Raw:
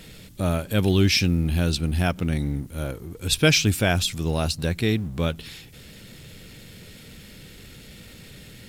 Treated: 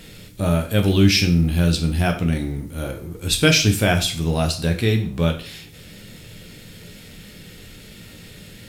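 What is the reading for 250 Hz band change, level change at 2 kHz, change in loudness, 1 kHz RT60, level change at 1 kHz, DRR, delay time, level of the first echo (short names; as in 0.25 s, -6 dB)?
+4.5 dB, +3.0 dB, +3.5 dB, 0.40 s, +3.5 dB, 3.5 dB, none, none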